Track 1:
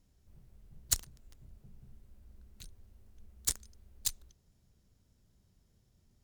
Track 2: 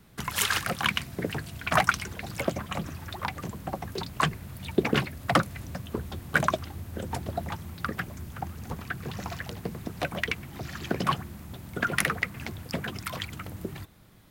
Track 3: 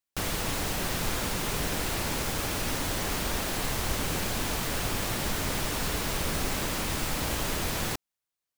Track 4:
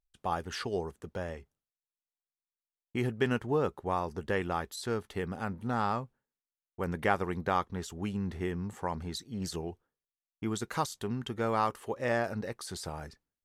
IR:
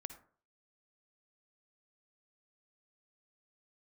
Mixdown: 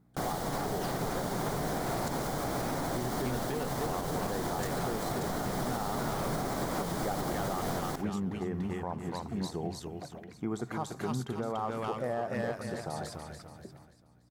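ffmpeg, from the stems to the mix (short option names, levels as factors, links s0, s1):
-filter_complex "[0:a]lowpass=f=3600:p=1,adelay=1150,volume=0.562[s0];[1:a]acrossover=split=420[s1][s2];[s2]acompressor=threshold=0.02:ratio=6[s3];[s1][s3]amix=inputs=2:normalize=0,aeval=exprs='val(0)+0.00447*(sin(2*PI*60*n/s)+sin(2*PI*2*60*n/s)/2+sin(2*PI*3*60*n/s)/3+sin(2*PI*4*60*n/s)/4+sin(2*PI*5*60*n/s)/5)':c=same,volume=0.168,asplit=2[s4][s5];[s5]volume=0.631[s6];[2:a]volume=1.26,asplit=2[s7][s8];[s8]volume=0.708[s9];[3:a]asoftclip=type=hard:threshold=0.075,volume=0.944,asplit=3[s10][s11][s12];[s11]volume=0.562[s13];[s12]volume=0.596[s14];[s4][s7][s10]amix=inputs=3:normalize=0,highpass=120,equalizer=f=130:t=q:w=4:g=8,equalizer=f=730:t=q:w=4:g=8,equalizer=f=1800:t=q:w=4:g=-3,lowpass=f=2500:w=0.5412,lowpass=f=2500:w=1.3066,alimiter=limit=0.0891:level=0:latency=1:release=231,volume=1[s15];[4:a]atrim=start_sample=2205[s16];[s6][s9][s13]amix=inputs=3:normalize=0[s17];[s17][s16]afir=irnorm=-1:irlink=0[s18];[s14]aecho=0:1:289|578|867|1156|1445|1734:1|0.4|0.16|0.064|0.0256|0.0102[s19];[s0][s15][s18][s19]amix=inputs=4:normalize=0,alimiter=limit=0.0668:level=0:latency=1:release=146"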